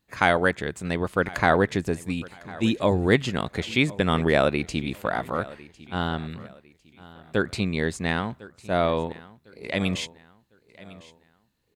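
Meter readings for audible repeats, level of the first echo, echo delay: 2, -20.0 dB, 1053 ms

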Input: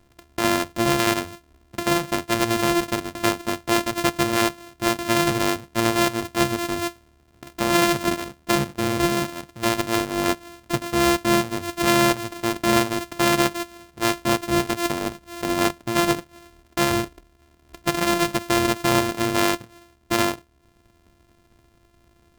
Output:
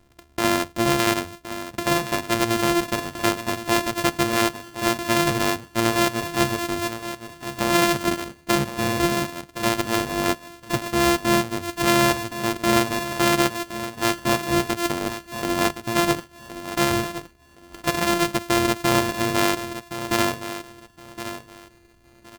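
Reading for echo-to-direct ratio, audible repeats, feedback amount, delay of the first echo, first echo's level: -11.5 dB, 2, 22%, 1067 ms, -11.5 dB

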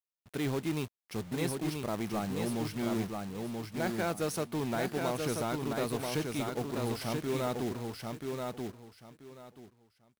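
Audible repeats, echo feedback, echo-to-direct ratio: 3, 21%, -4.0 dB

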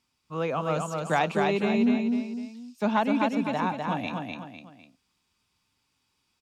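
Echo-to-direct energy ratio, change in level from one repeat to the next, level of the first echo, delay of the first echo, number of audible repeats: -3.0 dB, -8.0 dB, -3.5 dB, 252 ms, 3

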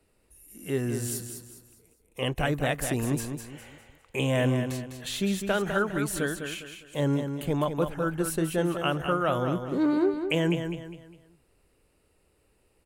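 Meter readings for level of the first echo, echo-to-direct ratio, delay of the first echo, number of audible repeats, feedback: -7.5 dB, -7.0 dB, 203 ms, 4, 35%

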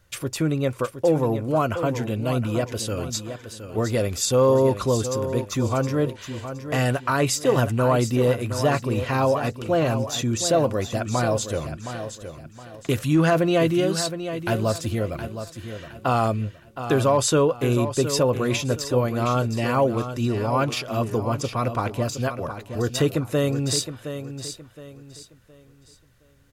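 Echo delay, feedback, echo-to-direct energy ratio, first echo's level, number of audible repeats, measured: 717 ms, 32%, -9.5 dB, -10.0 dB, 3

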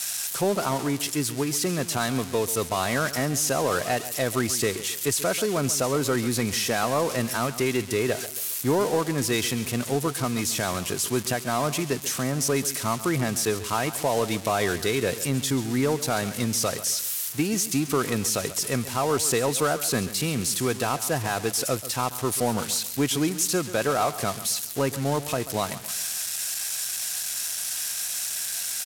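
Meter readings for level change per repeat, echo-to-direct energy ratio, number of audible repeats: -8.5 dB, -14.0 dB, 3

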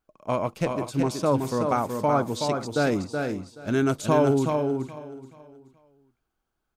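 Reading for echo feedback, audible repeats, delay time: no regular repeats, 6, 374 ms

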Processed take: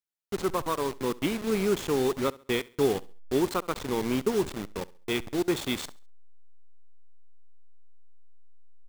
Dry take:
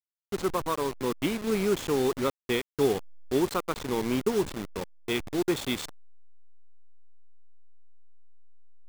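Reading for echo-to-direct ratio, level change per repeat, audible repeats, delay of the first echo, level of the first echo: -21.0 dB, -9.0 dB, 2, 68 ms, -21.5 dB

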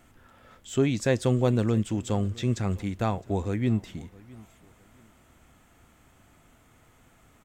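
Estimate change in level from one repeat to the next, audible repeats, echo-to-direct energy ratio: -11.0 dB, 2, -22.0 dB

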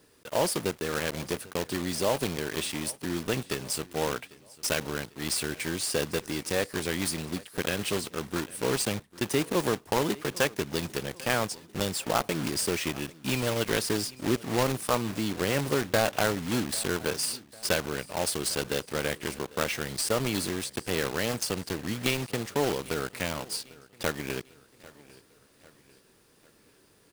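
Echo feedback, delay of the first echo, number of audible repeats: 49%, 797 ms, 3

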